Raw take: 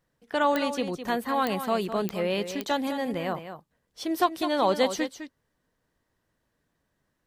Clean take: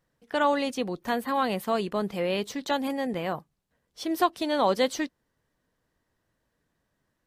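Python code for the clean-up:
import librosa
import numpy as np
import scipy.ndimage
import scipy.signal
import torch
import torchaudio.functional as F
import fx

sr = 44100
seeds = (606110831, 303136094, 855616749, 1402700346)

y = fx.fix_declick_ar(x, sr, threshold=10.0)
y = fx.fix_echo_inverse(y, sr, delay_ms=208, level_db=-10.0)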